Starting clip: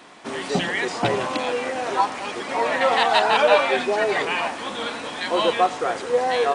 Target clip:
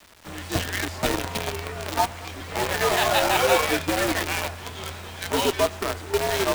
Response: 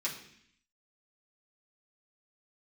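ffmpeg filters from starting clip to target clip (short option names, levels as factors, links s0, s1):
-filter_complex "[0:a]asplit=2[s0][s1];[1:a]atrim=start_sample=2205[s2];[s1][s2]afir=irnorm=-1:irlink=0,volume=0.141[s3];[s0][s3]amix=inputs=2:normalize=0,acrusher=bits=4:dc=4:mix=0:aa=0.000001,afreqshift=-86,volume=0.668"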